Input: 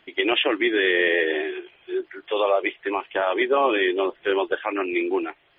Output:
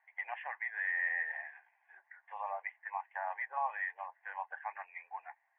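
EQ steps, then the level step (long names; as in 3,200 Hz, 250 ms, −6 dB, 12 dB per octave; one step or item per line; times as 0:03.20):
elliptic band-pass filter 790–1,900 Hz, stop band 70 dB
high-frequency loss of the air 150 metres
phaser with its sweep stopped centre 1,300 Hz, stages 6
−6.5 dB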